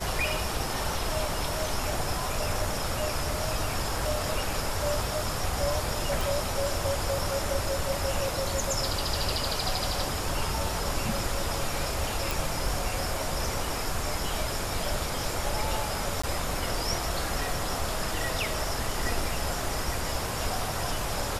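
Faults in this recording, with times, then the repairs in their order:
0:06.21: click
0:12.31: click
0:16.22–0:16.23: drop-out 15 ms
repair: click removal
repair the gap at 0:16.22, 15 ms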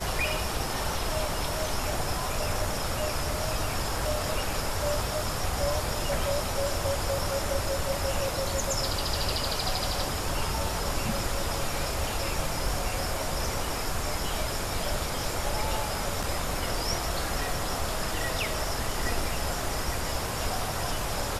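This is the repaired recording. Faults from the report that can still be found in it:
none of them is left

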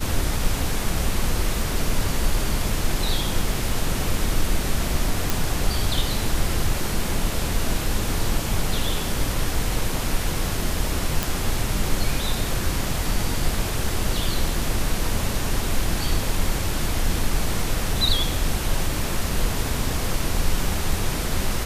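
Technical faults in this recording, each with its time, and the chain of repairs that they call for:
0:05.30: click
0:11.23: click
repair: click removal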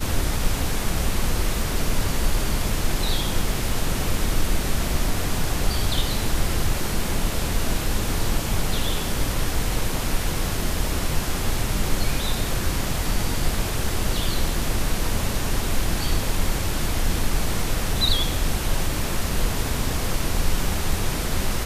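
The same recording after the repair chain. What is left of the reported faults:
none of them is left

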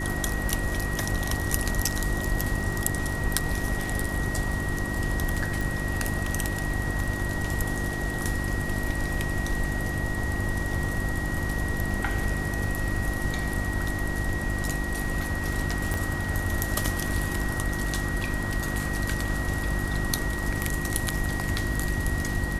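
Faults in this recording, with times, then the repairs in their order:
surface crackle 24 per second −36 dBFS
mains hum 50 Hz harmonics 7 −32 dBFS
whistle 1,900 Hz −33 dBFS
0:05.61: click
0:15.94: click −14 dBFS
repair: click removal
notch filter 1,900 Hz, Q 30
hum removal 50 Hz, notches 7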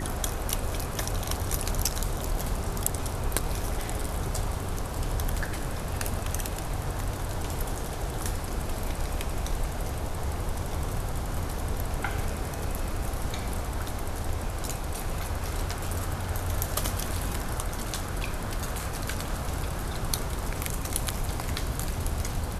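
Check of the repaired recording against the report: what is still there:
0:05.61: click

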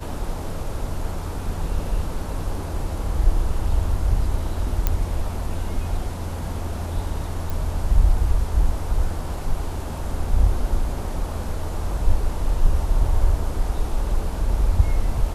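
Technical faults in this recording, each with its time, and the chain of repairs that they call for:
0:04.87: click −6 dBFS
0:07.50: click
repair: click removal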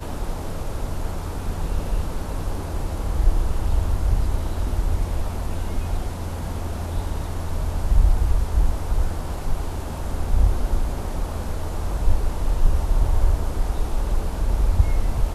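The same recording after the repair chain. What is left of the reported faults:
none of them is left

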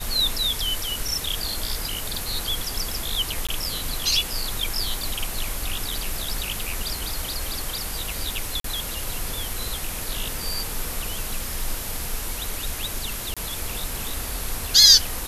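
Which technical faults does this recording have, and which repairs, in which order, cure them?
surface crackle 32 per second −33 dBFS
0:03.47–0:03.49: drop-out 16 ms
0:08.60–0:08.64: drop-out 43 ms
0:13.34–0:13.37: drop-out 26 ms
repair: click removal
repair the gap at 0:03.47, 16 ms
repair the gap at 0:08.60, 43 ms
repair the gap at 0:13.34, 26 ms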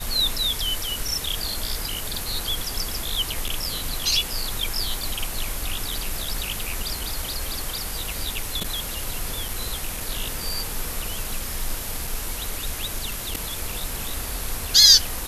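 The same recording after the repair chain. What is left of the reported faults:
none of them is left

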